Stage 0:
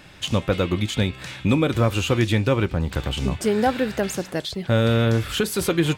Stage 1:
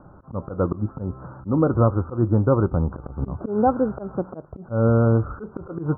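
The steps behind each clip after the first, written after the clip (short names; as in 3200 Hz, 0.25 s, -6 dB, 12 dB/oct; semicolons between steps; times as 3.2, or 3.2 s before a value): steep low-pass 1400 Hz 96 dB/oct; auto swell 0.144 s; gain +2 dB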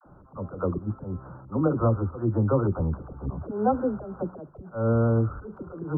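dispersion lows, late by 62 ms, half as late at 510 Hz; gain -4.5 dB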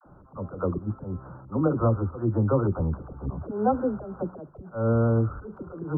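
nothing audible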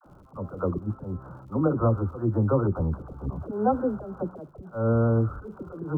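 crackle 140/s -56 dBFS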